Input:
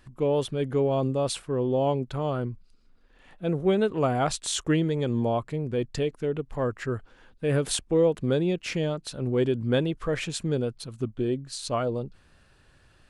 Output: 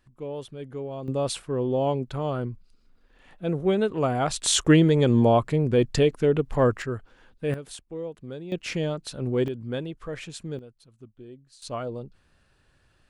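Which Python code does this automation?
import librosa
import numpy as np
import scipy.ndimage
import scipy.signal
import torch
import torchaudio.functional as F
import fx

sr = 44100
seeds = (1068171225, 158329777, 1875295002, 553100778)

y = fx.gain(x, sr, db=fx.steps((0.0, -10.0), (1.08, 0.0), (4.36, 7.0), (6.82, -1.0), (7.54, -13.0), (8.52, 0.0), (9.48, -7.0), (10.59, -17.5), (11.62, -5.0)))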